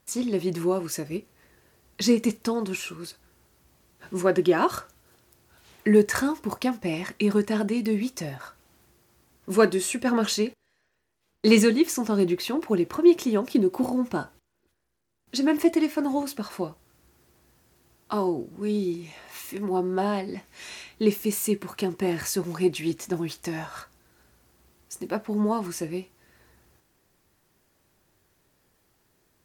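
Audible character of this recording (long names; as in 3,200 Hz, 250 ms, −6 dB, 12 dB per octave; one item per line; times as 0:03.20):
SBC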